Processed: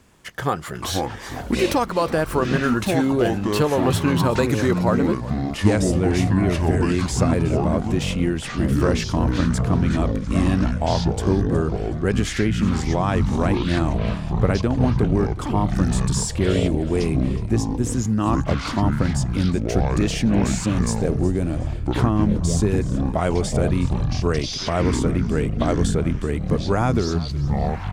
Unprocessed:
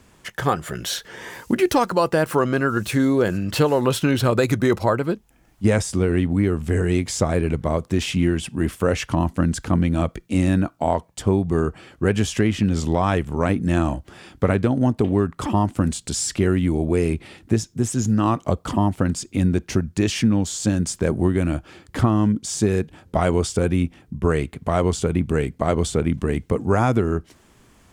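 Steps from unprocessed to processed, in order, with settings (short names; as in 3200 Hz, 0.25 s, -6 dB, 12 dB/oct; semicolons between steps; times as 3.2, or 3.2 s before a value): spectral gain 20.4–21.65, 840–3500 Hz -6 dB; echoes that change speed 0.255 s, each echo -7 st, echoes 3; on a send: frequency-shifting echo 0.367 s, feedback 34%, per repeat -46 Hz, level -17 dB; on the sum: gain -2 dB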